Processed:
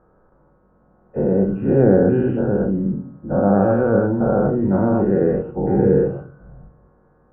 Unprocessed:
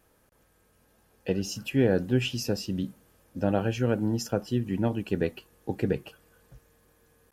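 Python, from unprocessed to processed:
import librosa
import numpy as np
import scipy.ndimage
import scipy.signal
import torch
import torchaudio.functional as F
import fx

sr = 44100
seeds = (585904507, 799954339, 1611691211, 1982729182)

y = fx.spec_dilate(x, sr, span_ms=240)
y = scipy.signal.sosfilt(scipy.signal.ellip(4, 1.0, 80, 1400.0, 'lowpass', fs=sr, output='sos'), y)
y = fx.room_shoebox(y, sr, seeds[0], volume_m3=330.0, walls='furnished', distance_m=1.0)
y = F.gain(torch.from_numpy(y), 3.5).numpy()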